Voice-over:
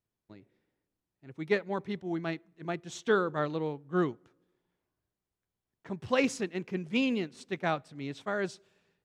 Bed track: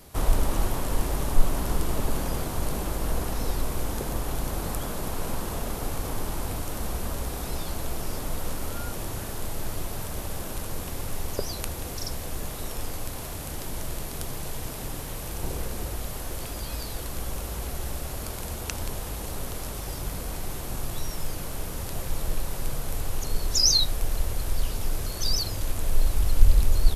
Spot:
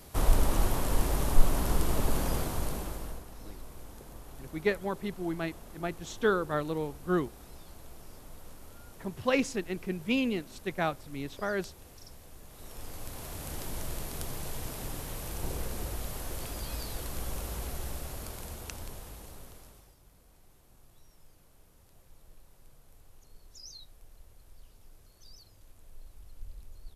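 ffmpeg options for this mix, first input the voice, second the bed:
-filter_complex "[0:a]adelay=3150,volume=1[s0];[1:a]volume=4.22,afade=t=out:st=2.34:d=0.89:silence=0.149624,afade=t=in:st=12.47:d=1.08:silence=0.199526,afade=t=out:st=17.52:d=2.43:silence=0.0630957[s1];[s0][s1]amix=inputs=2:normalize=0"

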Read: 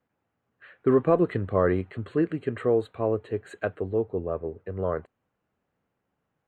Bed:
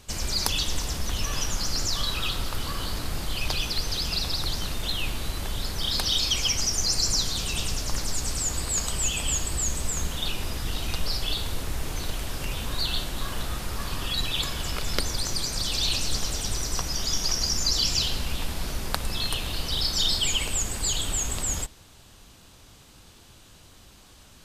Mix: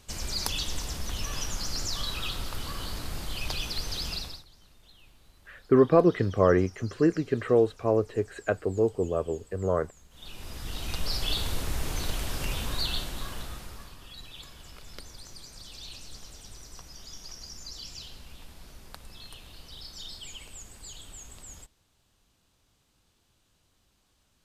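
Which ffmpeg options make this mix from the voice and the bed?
-filter_complex "[0:a]adelay=4850,volume=1.19[s0];[1:a]volume=13.3,afade=t=out:st=4.09:d=0.35:silence=0.0707946,afade=t=in:st=10.1:d=1.27:silence=0.0421697,afade=t=out:st=12.51:d=1.44:silence=0.133352[s1];[s0][s1]amix=inputs=2:normalize=0"

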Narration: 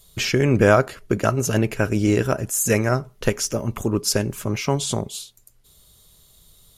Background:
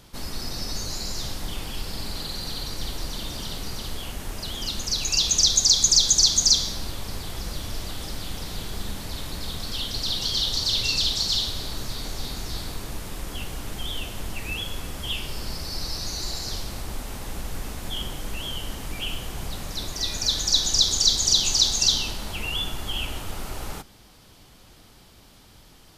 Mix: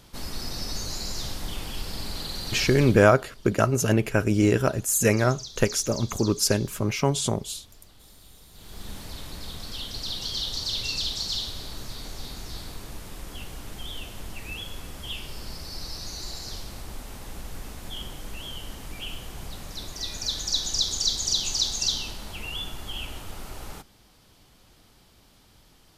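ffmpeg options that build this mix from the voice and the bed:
-filter_complex "[0:a]adelay=2350,volume=0.841[s0];[1:a]volume=5.01,afade=t=out:st=2.73:d=0.35:silence=0.105925,afade=t=in:st=8.52:d=0.42:silence=0.16788[s1];[s0][s1]amix=inputs=2:normalize=0"

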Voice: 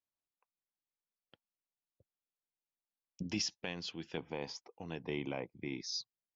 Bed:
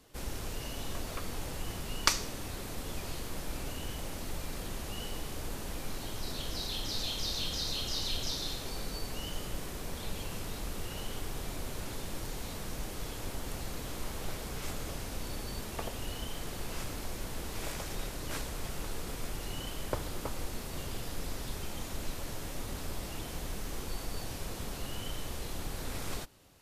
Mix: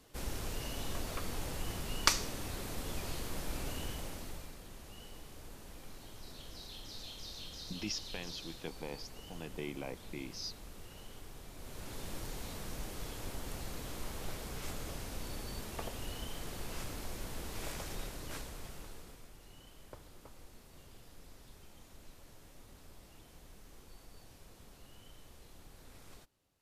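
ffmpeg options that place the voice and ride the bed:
-filter_complex "[0:a]adelay=4500,volume=0.708[s0];[1:a]volume=2.37,afade=t=out:st=3.8:d=0.77:silence=0.281838,afade=t=in:st=11.54:d=0.54:silence=0.375837,afade=t=out:st=17.88:d=1.39:silence=0.199526[s1];[s0][s1]amix=inputs=2:normalize=0"

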